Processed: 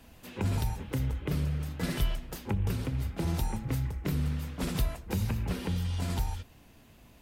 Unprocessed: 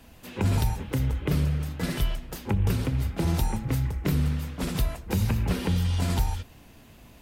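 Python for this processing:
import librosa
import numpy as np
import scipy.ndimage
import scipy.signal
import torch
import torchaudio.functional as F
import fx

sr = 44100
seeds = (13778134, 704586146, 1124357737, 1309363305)

y = fx.rider(x, sr, range_db=3, speed_s=0.5)
y = y * librosa.db_to_amplitude(-5.0)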